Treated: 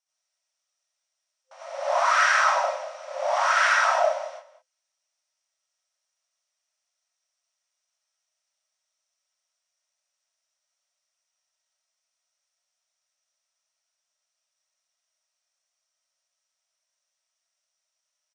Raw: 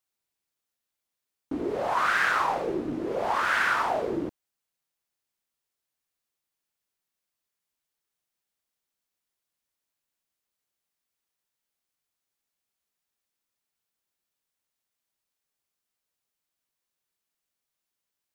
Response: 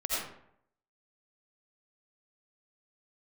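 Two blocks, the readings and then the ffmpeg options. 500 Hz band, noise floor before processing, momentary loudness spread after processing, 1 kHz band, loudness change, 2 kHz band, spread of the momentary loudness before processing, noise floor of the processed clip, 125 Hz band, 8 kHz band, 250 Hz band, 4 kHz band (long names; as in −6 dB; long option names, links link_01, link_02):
+3.5 dB, below −85 dBFS, 16 LU, +4.0 dB, +4.5 dB, +3.5 dB, 10 LU, −83 dBFS, below −40 dB, +10.5 dB, below −40 dB, +5.5 dB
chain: -filter_complex "[0:a]equalizer=frequency=5700:width=5.7:gain=14,asplit=2[link_01][link_02];[link_02]adelay=192.4,volume=-14dB,highshelf=frequency=4000:gain=-4.33[link_03];[link_01][link_03]amix=inputs=2:normalize=0[link_04];[1:a]atrim=start_sample=2205,atrim=end_sample=6174[link_05];[link_04][link_05]afir=irnorm=-1:irlink=0,afftfilt=real='re*between(b*sr/4096,520,9700)':imag='im*between(b*sr/4096,520,9700)':win_size=4096:overlap=0.75,volume=-2dB"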